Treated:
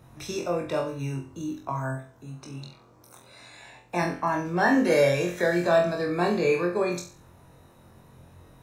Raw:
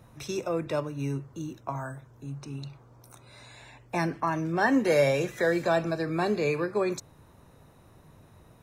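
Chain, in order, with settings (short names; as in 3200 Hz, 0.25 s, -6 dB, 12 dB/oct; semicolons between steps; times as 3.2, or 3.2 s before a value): 1.95–4.03 low shelf 110 Hz -9.5 dB; flutter echo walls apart 3.9 m, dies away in 0.39 s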